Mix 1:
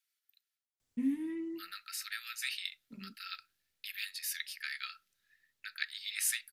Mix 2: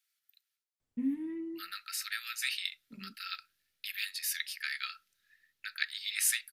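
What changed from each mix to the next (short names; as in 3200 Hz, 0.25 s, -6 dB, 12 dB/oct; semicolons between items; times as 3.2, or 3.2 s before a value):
first voice: add high shelf 2400 Hz -11.5 dB; second voice +3.5 dB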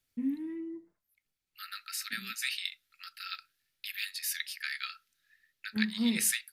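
first voice: entry -0.80 s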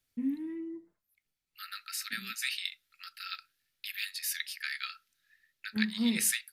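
none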